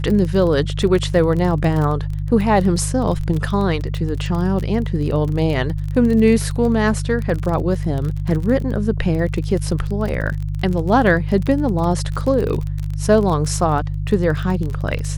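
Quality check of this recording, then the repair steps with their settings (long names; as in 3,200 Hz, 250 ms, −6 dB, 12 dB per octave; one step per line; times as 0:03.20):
surface crackle 28 per second −23 dBFS
mains hum 50 Hz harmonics 3 −23 dBFS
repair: click removal
hum removal 50 Hz, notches 3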